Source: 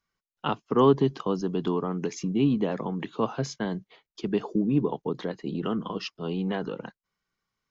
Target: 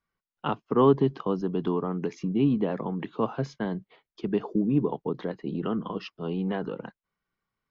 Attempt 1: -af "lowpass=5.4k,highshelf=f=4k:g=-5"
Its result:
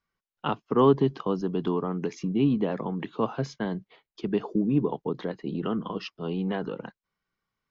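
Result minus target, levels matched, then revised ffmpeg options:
8000 Hz band +5.0 dB
-af "lowpass=5.4k,highshelf=f=4k:g=-12"

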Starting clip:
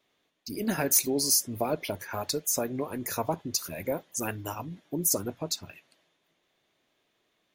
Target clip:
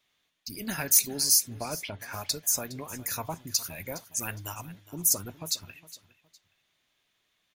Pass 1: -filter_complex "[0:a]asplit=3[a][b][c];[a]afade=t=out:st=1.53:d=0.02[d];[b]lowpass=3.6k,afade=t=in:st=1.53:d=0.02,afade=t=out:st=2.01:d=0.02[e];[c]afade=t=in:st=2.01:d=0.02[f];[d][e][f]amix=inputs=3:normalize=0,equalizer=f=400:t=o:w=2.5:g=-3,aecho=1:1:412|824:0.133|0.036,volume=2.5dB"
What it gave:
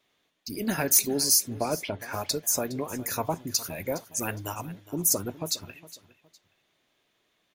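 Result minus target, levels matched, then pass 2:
500 Hz band +8.0 dB
-filter_complex "[0:a]asplit=3[a][b][c];[a]afade=t=out:st=1.53:d=0.02[d];[b]lowpass=3.6k,afade=t=in:st=1.53:d=0.02,afade=t=out:st=2.01:d=0.02[e];[c]afade=t=in:st=2.01:d=0.02[f];[d][e][f]amix=inputs=3:normalize=0,equalizer=f=400:t=o:w=2.5:g=-13,aecho=1:1:412|824:0.133|0.036,volume=2.5dB"

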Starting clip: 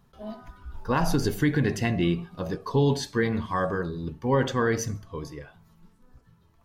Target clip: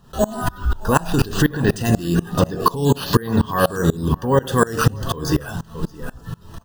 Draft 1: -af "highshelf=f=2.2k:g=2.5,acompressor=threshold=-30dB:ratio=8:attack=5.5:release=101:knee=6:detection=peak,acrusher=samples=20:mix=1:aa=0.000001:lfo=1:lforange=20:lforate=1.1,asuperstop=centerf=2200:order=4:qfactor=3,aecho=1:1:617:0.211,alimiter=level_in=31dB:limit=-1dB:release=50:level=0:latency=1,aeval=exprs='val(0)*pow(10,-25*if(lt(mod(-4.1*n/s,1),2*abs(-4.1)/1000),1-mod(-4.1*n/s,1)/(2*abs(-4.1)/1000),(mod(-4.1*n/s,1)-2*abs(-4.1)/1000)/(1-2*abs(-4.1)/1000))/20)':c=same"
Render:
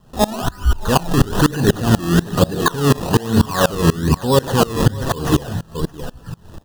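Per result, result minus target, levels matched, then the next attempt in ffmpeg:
compressor: peak gain reduction -8.5 dB; decimation with a swept rate: distortion +8 dB
-af "highshelf=f=2.2k:g=2.5,acompressor=threshold=-40dB:ratio=8:attack=5.5:release=101:knee=6:detection=peak,acrusher=samples=20:mix=1:aa=0.000001:lfo=1:lforange=20:lforate=1.1,asuperstop=centerf=2200:order=4:qfactor=3,aecho=1:1:617:0.211,alimiter=level_in=31dB:limit=-1dB:release=50:level=0:latency=1,aeval=exprs='val(0)*pow(10,-25*if(lt(mod(-4.1*n/s,1),2*abs(-4.1)/1000),1-mod(-4.1*n/s,1)/(2*abs(-4.1)/1000),(mod(-4.1*n/s,1)-2*abs(-4.1)/1000)/(1-2*abs(-4.1)/1000))/20)':c=same"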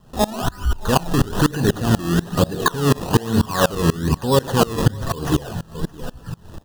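decimation with a swept rate: distortion +8 dB
-af "highshelf=f=2.2k:g=2.5,acompressor=threshold=-40dB:ratio=8:attack=5.5:release=101:knee=6:detection=peak,acrusher=samples=4:mix=1:aa=0.000001:lfo=1:lforange=4:lforate=1.1,asuperstop=centerf=2200:order=4:qfactor=3,aecho=1:1:617:0.211,alimiter=level_in=31dB:limit=-1dB:release=50:level=0:latency=1,aeval=exprs='val(0)*pow(10,-25*if(lt(mod(-4.1*n/s,1),2*abs(-4.1)/1000),1-mod(-4.1*n/s,1)/(2*abs(-4.1)/1000),(mod(-4.1*n/s,1)-2*abs(-4.1)/1000)/(1-2*abs(-4.1)/1000))/20)':c=same"

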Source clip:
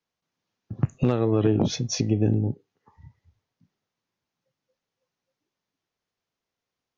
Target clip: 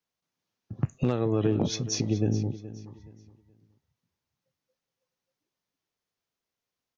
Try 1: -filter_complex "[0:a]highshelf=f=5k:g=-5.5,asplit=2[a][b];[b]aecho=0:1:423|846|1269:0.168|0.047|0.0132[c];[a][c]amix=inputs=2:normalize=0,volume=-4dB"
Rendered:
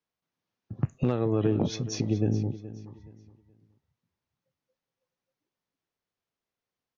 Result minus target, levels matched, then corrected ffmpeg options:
8000 Hz band -6.0 dB
-filter_complex "[0:a]highshelf=f=5k:g=5,asplit=2[a][b];[b]aecho=0:1:423|846|1269:0.168|0.047|0.0132[c];[a][c]amix=inputs=2:normalize=0,volume=-4dB"

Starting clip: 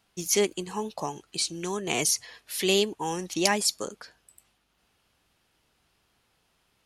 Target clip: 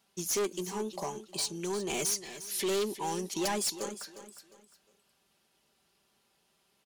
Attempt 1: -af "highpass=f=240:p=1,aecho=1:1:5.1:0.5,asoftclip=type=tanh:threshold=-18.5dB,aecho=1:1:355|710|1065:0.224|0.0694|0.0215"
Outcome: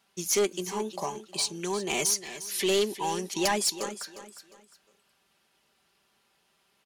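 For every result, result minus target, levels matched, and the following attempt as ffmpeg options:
soft clip: distortion -5 dB; 2000 Hz band +2.5 dB
-af "highpass=f=240:p=1,aecho=1:1:5.1:0.5,asoftclip=type=tanh:threshold=-27dB,aecho=1:1:355|710|1065:0.224|0.0694|0.0215"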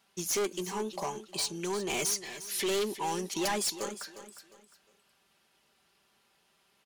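2000 Hz band +3.0 dB
-af "highpass=f=240:p=1,equalizer=f=1.7k:w=0.58:g=-5.5,aecho=1:1:5.1:0.5,asoftclip=type=tanh:threshold=-27dB,aecho=1:1:355|710|1065:0.224|0.0694|0.0215"

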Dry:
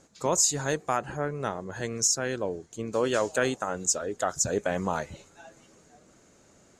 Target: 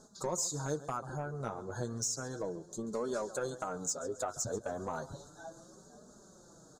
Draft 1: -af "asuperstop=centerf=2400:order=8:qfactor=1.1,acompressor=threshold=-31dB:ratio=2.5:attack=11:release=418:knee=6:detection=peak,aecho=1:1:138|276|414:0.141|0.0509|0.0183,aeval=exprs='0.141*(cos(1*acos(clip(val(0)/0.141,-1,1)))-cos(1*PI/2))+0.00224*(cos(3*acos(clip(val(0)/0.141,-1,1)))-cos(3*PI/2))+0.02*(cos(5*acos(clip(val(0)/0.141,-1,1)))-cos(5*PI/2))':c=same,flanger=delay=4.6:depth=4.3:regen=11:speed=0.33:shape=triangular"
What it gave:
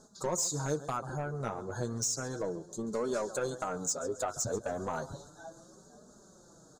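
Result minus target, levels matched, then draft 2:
compressor: peak gain reduction -3.5 dB
-af "asuperstop=centerf=2400:order=8:qfactor=1.1,acompressor=threshold=-37dB:ratio=2.5:attack=11:release=418:knee=6:detection=peak,aecho=1:1:138|276|414:0.141|0.0509|0.0183,aeval=exprs='0.141*(cos(1*acos(clip(val(0)/0.141,-1,1)))-cos(1*PI/2))+0.00224*(cos(3*acos(clip(val(0)/0.141,-1,1)))-cos(3*PI/2))+0.02*(cos(5*acos(clip(val(0)/0.141,-1,1)))-cos(5*PI/2))':c=same,flanger=delay=4.6:depth=4.3:regen=11:speed=0.33:shape=triangular"

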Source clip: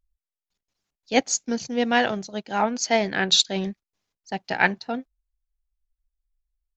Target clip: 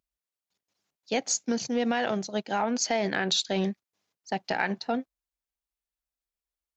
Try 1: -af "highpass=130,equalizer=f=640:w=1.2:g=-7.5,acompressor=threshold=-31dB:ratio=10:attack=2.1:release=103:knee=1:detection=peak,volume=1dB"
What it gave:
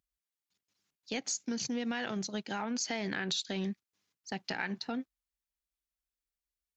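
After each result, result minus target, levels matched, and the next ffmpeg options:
compressor: peak gain reduction +8 dB; 500 Hz band -4.0 dB
-af "highpass=130,equalizer=f=640:w=1.2:g=-7.5,acompressor=threshold=-22dB:ratio=10:attack=2.1:release=103:knee=1:detection=peak,volume=1dB"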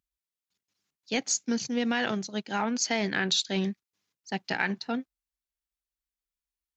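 500 Hz band -3.5 dB
-af "highpass=130,equalizer=f=640:w=1.2:g=2,acompressor=threshold=-22dB:ratio=10:attack=2.1:release=103:knee=1:detection=peak,volume=1dB"

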